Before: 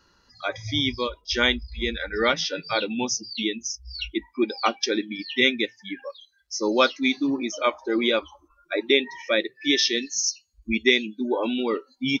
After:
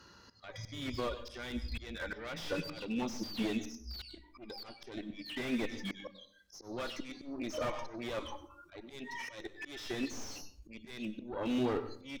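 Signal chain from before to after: HPF 74 Hz; low shelf 160 Hz +4 dB; added harmonics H 5 -24 dB, 6 -13 dB, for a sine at -5 dBFS; limiter -17 dBFS, peak gain reduction 14 dB; compressor 2:1, threshold -31 dBFS, peak gain reduction 6 dB; auto swell 0.474 s; on a send at -14 dB: reverb RT60 0.55 s, pre-delay 96 ms; on the sum: slew limiter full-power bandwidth 22 Hz; gain +1 dB

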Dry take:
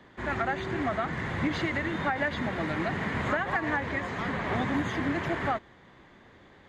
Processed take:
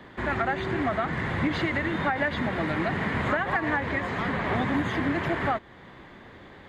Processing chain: in parallel at +2.5 dB: compressor, threshold -38 dBFS, peak gain reduction 14 dB; on the sum: bell 6300 Hz -6 dB 0.63 oct

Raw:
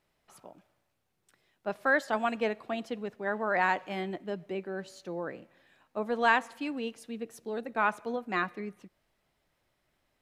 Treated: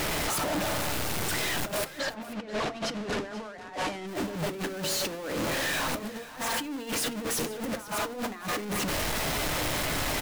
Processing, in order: zero-crossing step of -26.5 dBFS; 1.93–4.06 LPF 4100 Hz -> 8200 Hz 12 dB/oct; negative-ratio compressor -32 dBFS, ratio -0.5; echo 0.487 s -17 dB; FDN reverb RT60 0.35 s, low-frequency decay 1.45×, high-frequency decay 0.6×, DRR 12 dB

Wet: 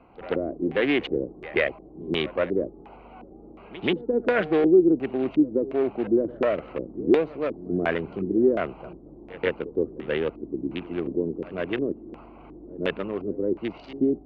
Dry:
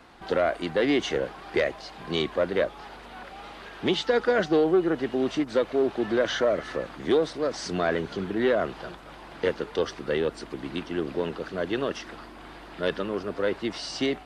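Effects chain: Wiener smoothing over 25 samples; pre-echo 0.132 s -17 dB; LFO low-pass square 1.4 Hz 340–2500 Hz

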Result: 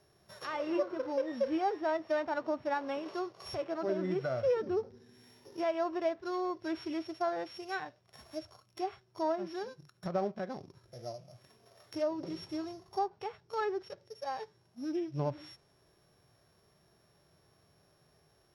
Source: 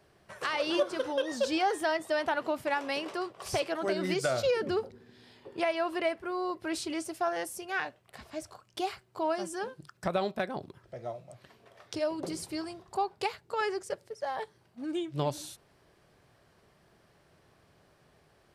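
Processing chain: sample sorter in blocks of 8 samples; treble ducked by the level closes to 1900 Hz, closed at -28 dBFS; harmonic-percussive split percussive -10 dB; gain -1 dB

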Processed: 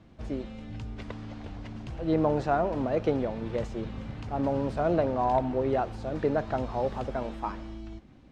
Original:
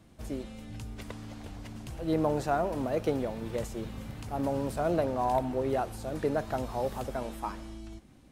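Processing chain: air absorption 150 m; gain +3 dB

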